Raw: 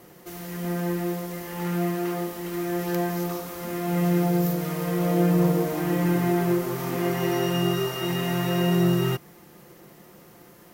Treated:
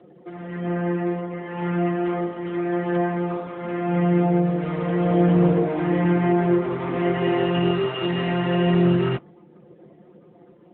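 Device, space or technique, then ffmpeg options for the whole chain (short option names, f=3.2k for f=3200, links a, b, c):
mobile call with aggressive noise cancelling: -af "highpass=f=160:p=1,afftdn=nr=15:nf=-47,volume=5dB" -ar 8000 -c:a libopencore_amrnb -b:a 10200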